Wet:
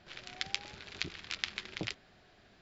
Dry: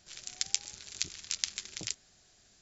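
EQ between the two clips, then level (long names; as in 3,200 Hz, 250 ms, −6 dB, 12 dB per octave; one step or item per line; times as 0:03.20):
high-frequency loss of the air 390 metres
low-shelf EQ 130 Hz −8 dB
+10.0 dB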